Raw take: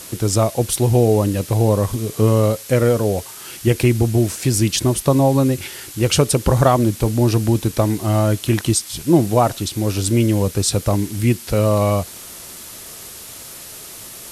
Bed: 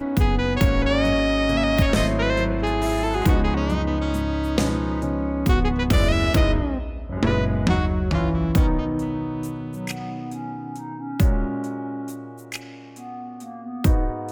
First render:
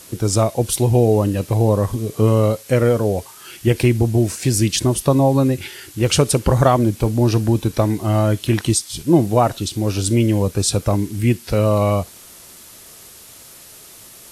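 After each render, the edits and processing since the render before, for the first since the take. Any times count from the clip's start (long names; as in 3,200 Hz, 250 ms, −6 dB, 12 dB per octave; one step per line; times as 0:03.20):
noise reduction from a noise print 6 dB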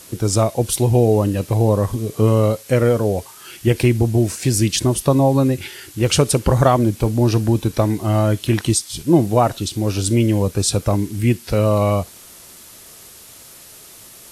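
no processing that can be heard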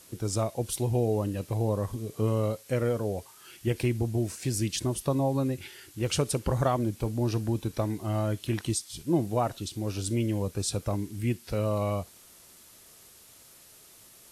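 level −12 dB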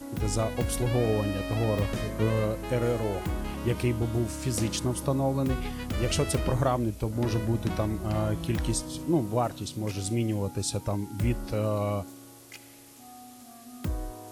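mix in bed −13.5 dB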